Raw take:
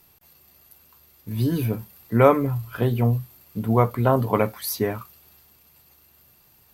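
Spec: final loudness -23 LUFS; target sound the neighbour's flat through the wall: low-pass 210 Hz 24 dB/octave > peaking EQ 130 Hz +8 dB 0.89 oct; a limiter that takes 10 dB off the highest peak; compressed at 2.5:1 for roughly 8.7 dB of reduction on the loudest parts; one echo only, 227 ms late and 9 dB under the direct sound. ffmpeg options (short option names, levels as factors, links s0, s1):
-af "acompressor=threshold=0.0708:ratio=2.5,alimiter=limit=0.1:level=0:latency=1,lowpass=f=210:w=0.5412,lowpass=f=210:w=1.3066,equalizer=f=130:t=o:w=0.89:g=8,aecho=1:1:227:0.355,volume=1.5"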